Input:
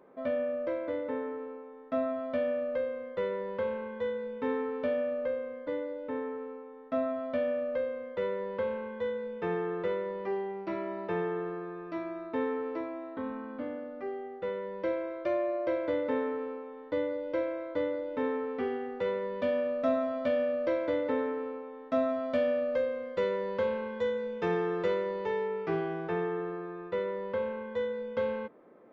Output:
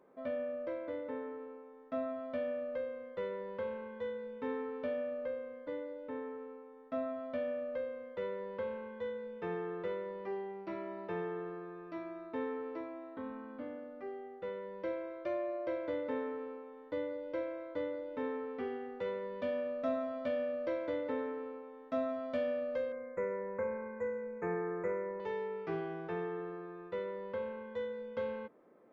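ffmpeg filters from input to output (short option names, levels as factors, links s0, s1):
-filter_complex "[0:a]asettb=1/sr,asplit=3[s0][s1][s2];[s0]atrim=end=22.924[s3];[s1]atrim=start=22.92:end=25.2,asetpts=PTS-STARTPTS,afade=t=in:d=0.004:c=qsin,afade=t=out:st=2.276:d=0.004:c=qsin,asuperstop=centerf=4000:order=20:qfactor=1[s4];[s2]atrim=start=25.196[s5];[s3][s4]acrossfade=d=0.004:c1=hsin:c2=qsin[s6];[s6][s5]acrossfade=d=0.004:c1=qsin:c2=hsin,volume=0.473"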